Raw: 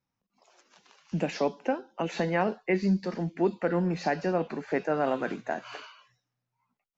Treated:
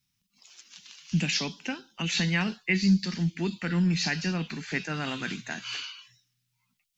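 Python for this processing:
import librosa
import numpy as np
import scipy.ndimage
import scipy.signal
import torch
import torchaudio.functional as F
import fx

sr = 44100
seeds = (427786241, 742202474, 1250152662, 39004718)

y = fx.curve_eq(x, sr, hz=(170.0, 570.0, 3200.0), db=(0, -22, 8))
y = F.gain(torch.from_numpy(y), 6.0).numpy()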